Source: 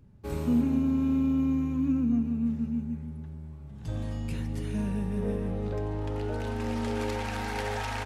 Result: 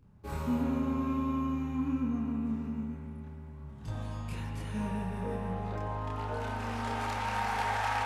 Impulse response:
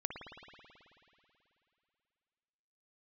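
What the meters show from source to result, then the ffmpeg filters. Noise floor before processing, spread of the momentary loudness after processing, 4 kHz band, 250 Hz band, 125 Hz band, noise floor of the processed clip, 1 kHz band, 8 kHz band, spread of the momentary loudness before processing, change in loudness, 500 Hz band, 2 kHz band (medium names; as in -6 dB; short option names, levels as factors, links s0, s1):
-43 dBFS, 10 LU, -1.5 dB, -6.0 dB, -4.0 dB, -45 dBFS, +5.0 dB, no reading, 12 LU, -4.5 dB, -5.0 dB, +1.5 dB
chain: -filter_complex "[0:a]asplit=2[s0][s1];[s1]equalizer=f=1000:t=o:w=1.4:g=11[s2];[1:a]atrim=start_sample=2205,lowshelf=f=460:g=-6,adelay=28[s3];[s2][s3]afir=irnorm=-1:irlink=0,volume=1.06[s4];[s0][s4]amix=inputs=2:normalize=0,volume=0.562"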